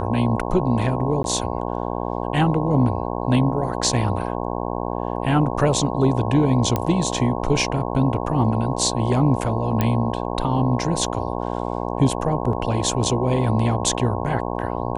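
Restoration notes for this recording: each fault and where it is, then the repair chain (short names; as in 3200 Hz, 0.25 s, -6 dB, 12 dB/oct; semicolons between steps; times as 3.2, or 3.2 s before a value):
buzz 60 Hz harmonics 18 -26 dBFS
1.23–1.24 gap 12 ms
6.76 pop -8 dBFS
9.81 pop -7 dBFS
12.53 gap 2.4 ms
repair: de-click; de-hum 60 Hz, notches 18; interpolate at 1.23, 12 ms; interpolate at 12.53, 2.4 ms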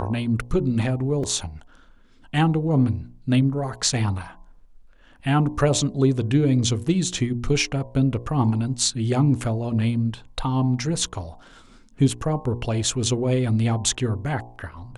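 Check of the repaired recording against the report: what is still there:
none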